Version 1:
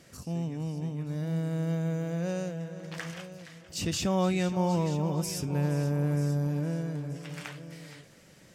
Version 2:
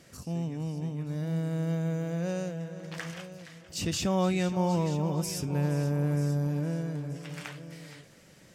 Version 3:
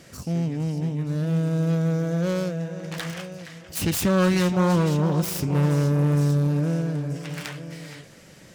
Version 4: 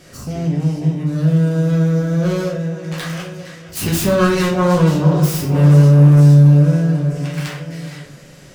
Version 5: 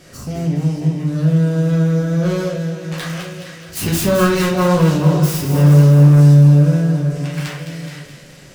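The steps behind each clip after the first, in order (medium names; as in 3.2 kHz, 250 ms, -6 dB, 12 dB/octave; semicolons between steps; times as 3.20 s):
no audible change
self-modulated delay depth 0.3 ms; trim +7.5 dB
simulated room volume 63 m³, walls mixed, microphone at 0.97 m; trim +1.5 dB
feedback echo behind a high-pass 212 ms, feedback 60%, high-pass 1.8 kHz, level -8 dB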